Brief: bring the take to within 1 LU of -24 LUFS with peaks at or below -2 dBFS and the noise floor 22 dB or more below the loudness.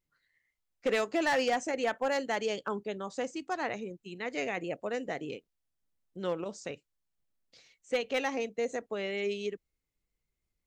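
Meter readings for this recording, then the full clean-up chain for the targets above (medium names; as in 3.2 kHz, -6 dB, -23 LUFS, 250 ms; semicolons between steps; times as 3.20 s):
clipped samples 0.5%; clipping level -22.5 dBFS; loudness -33.5 LUFS; peak level -22.5 dBFS; loudness target -24.0 LUFS
-> clip repair -22.5 dBFS; trim +9.5 dB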